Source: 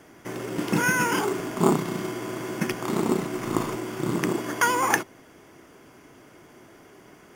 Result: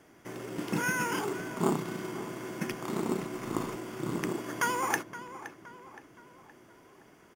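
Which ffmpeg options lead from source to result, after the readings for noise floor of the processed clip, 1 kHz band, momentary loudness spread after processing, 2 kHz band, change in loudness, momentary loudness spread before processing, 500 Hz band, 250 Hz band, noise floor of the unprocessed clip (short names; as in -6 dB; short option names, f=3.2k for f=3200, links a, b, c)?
-58 dBFS, -7.5 dB, 16 LU, -7.5 dB, -7.5 dB, 10 LU, -7.5 dB, -7.5 dB, -52 dBFS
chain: -filter_complex "[0:a]asplit=2[a][b];[b]adelay=519,lowpass=f=3.7k:p=1,volume=-13.5dB,asplit=2[c][d];[d]adelay=519,lowpass=f=3.7k:p=1,volume=0.49,asplit=2[e][f];[f]adelay=519,lowpass=f=3.7k:p=1,volume=0.49,asplit=2[g][h];[h]adelay=519,lowpass=f=3.7k:p=1,volume=0.49,asplit=2[i][j];[j]adelay=519,lowpass=f=3.7k:p=1,volume=0.49[k];[a][c][e][g][i][k]amix=inputs=6:normalize=0,volume=-7.5dB"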